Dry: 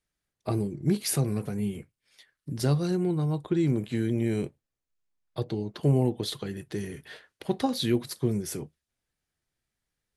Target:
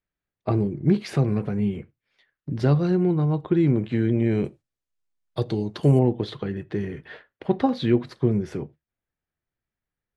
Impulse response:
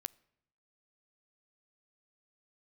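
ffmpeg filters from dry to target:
-filter_complex "[0:a]agate=range=-8dB:threshold=-50dB:ratio=16:detection=peak,asetnsamples=nb_out_samples=441:pad=0,asendcmd='4.45 lowpass f 8600;5.99 lowpass f 2200',lowpass=2600[link_01];[1:a]atrim=start_sample=2205,atrim=end_sample=4410[link_02];[link_01][link_02]afir=irnorm=-1:irlink=0,volume=8.5dB"

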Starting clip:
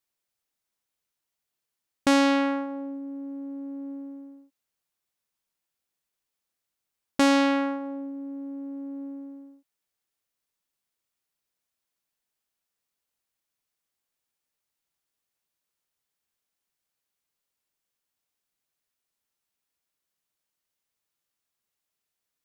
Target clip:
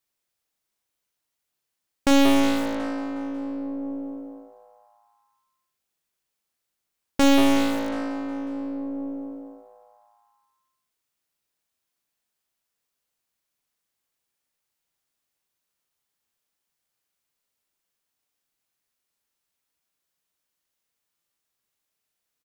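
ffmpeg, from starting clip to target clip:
ffmpeg -i in.wav -filter_complex "[0:a]asplit=8[link_01][link_02][link_03][link_04][link_05][link_06][link_07][link_08];[link_02]adelay=182,afreqshift=110,volume=-13dB[link_09];[link_03]adelay=364,afreqshift=220,volume=-17.4dB[link_10];[link_04]adelay=546,afreqshift=330,volume=-21.9dB[link_11];[link_05]adelay=728,afreqshift=440,volume=-26.3dB[link_12];[link_06]adelay=910,afreqshift=550,volume=-30.7dB[link_13];[link_07]adelay=1092,afreqshift=660,volume=-35.2dB[link_14];[link_08]adelay=1274,afreqshift=770,volume=-39.6dB[link_15];[link_01][link_09][link_10][link_11][link_12][link_13][link_14][link_15]amix=inputs=8:normalize=0,aeval=exprs='0.282*(cos(1*acos(clip(val(0)/0.282,-1,1)))-cos(1*PI/2))+0.00178*(cos(2*acos(clip(val(0)/0.282,-1,1)))-cos(2*PI/2))+0.00501*(cos(4*acos(clip(val(0)/0.282,-1,1)))-cos(4*PI/2))+0.0562*(cos(6*acos(clip(val(0)/0.282,-1,1)))-cos(6*PI/2))':channel_layout=same,asplit=2[link_16][link_17];[link_17]adelay=40,volume=-7.5dB[link_18];[link_16][link_18]amix=inputs=2:normalize=0,asplit=2[link_19][link_20];[link_20]aeval=exprs='(mod(10*val(0)+1,2)-1)/10':channel_layout=same,volume=-11dB[link_21];[link_19][link_21]amix=inputs=2:normalize=0" out.wav

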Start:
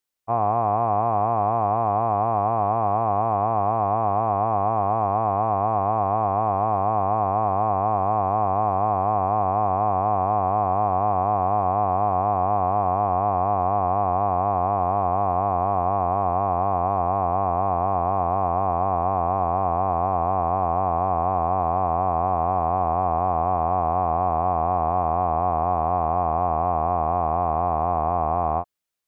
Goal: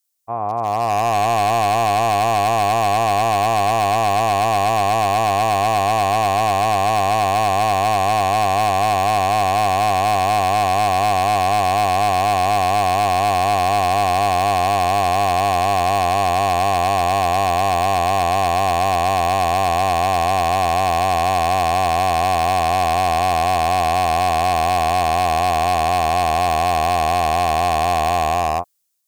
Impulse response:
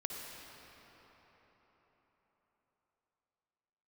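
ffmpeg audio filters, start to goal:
-af "dynaudnorm=framelen=190:gausssize=9:maxgain=15dB,asoftclip=type=hard:threshold=-10dB,bass=frequency=250:gain=-3,treble=frequency=4000:gain=15,volume=-2.5dB"

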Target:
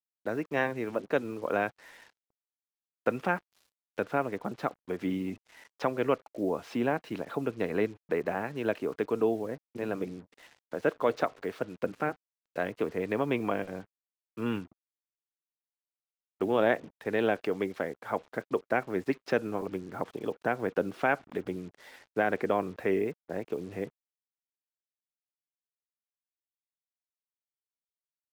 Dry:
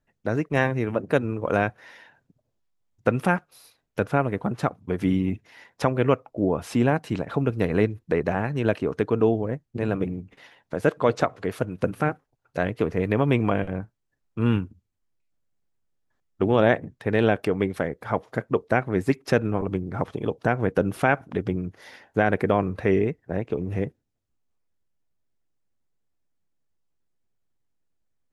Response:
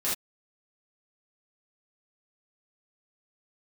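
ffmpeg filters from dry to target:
-filter_complex "[0:a]acrossover=split=210 5800:gain=0.178 1 0.0891[link_01][link_02][link_03];[link_01][link_02][link_03]amix=inputs=3:normalize=0,acrusher=bits=7:mix=0:aa=0.5,volume=-5.5dB"

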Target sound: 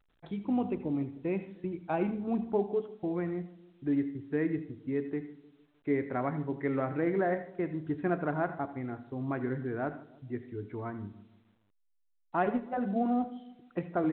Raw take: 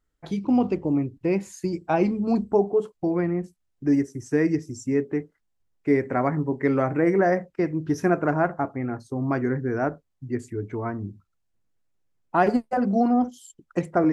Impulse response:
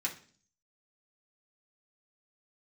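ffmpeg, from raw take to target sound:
-filter_complex "[0:a]asplit=2[link_01][link_02];[link_02]adelay=153,lowpass=frequency=1100:poles=1,volume=-17dB,asplit=2[link_03][link_04];[link_04]adelay=153,lowpass=frequency=1100:poles=1,volume=0.47,asplit=2[link_05][link_06];[link_06]adelay=153,lowpass=frequency=1100:poles=1,volume=0.47,asplit=2[link_07][link_08];[link_08]adelay=153,lowpass=frequency=1100:poles=1,volume=0.47[link_09];[link_01][link_03][link_05][link_07][link_09]amix=inputs=5:normalize=0,asplit=2[link_10][link_11];[1:a]atrim=start_sample=2205,adelay=76[link_12];[link_11][link_12]afir=irnorm=-1:irlink=0,volume=-15.5dB[link_13];[link_10][link_13]amix=inputs=2:normalize=0,volume=-9dB" -ar 8000 -c:a pcm_alaw

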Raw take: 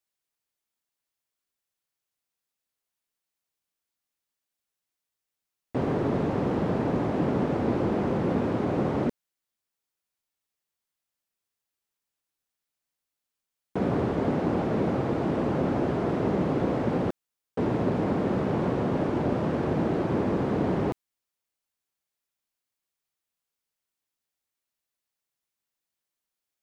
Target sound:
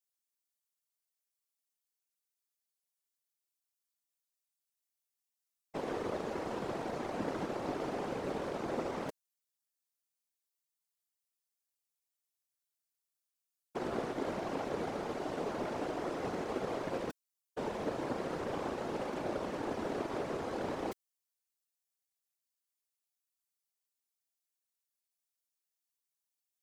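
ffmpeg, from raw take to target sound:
ffmpeg -i in.wav -af "bass=frequency=250:gain=-15,treble=frequency=4000:gain=10,aeval=exprs='0.133*(cos(1*acos(clip(val(0)/0.133,-1,1)))-cos(1*PI/2))+0.00237*(cos(3*acos(clip(val(0)/0.133,-1,1)))-cos(3*PI/2))+0.0075*(cos(7*acos(clip(val(0)/0.133,-1,1)))-cos(7*PI/2))':channel_layout=same,afftfilt=real='hypot(re,im)*cos(2*PI*random(0))':imag='hypot(re,im)*sin(2*PI*random(1))':win_size=512:overlap=0.75" out.wav

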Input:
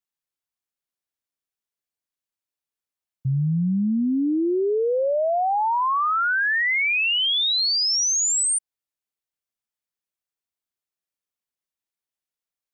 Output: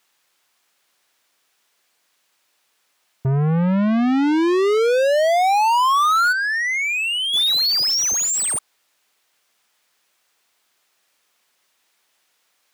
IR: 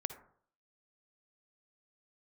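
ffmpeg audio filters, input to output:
-filter_complex "[0:a]asplit=3[link_01][link_02][link_03];[link_01]afade=type=out:start_time=6.31:duration=0.02[link_04];[link_02]agate=range=-33dB:threshold=-8dB:ratio=3:detection=peak,afade=type=in:start_time=6.31:duration=0.02,afade=type=out:start_time=7.33:duration=0.02[link_05];[link_03]afade=type=in:start_time=7.33:duration=0.02[link_06];[link_04][link_05][link_06]amix=inputs=3:normalize=0,asplit=2[link_07][link_08];[link_08]highpass=frequency=720:poles=1,volume=31dB,asoftclip=type=tanh:threshold=-18dB[link_09];[link_07][link_09]amix=inputs=2:normalize=0,lowpass=frequency=4400:poles=1,volume=-6dB,volume=4.5dB"

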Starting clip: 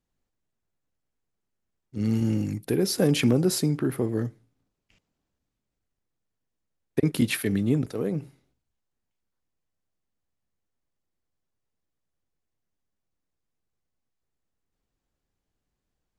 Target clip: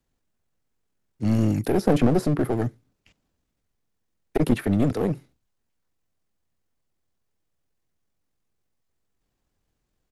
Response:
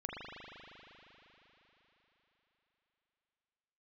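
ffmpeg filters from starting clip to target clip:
-filter_complex "[0:a]acrossover=split=200|710|1600[link_01][link_02][link_03][link_04];[link_04]acompressor=threshold=-46dB:ratio=6[link_05];[link_01][link_02][link_03][link_05]amix=inputs=4:normalize=0,atempo=1.6,aeval=exprs='clip(val(0),-1,0.0422)':channel_layout=same,volume=6dB"

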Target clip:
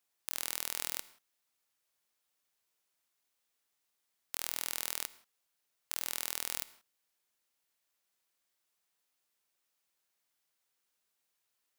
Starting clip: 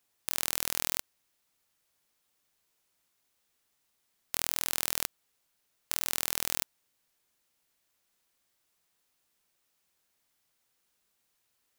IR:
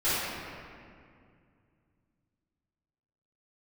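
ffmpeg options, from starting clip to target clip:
-filter_complex "[0:a]lowshelf=frequency=260:gain=-8.5,asplit=2[link_01][link_02];[1:a]atrim=start_sample=2205,atrim=end_sample=6174,adelay=51[link_03];[link_02][link_03]afir=irnorm=-1:irlink=0,volume=-28dB[link_04];[link_01][link_04]amix=inputs=2:normalize=0,volume=-5.5dB"

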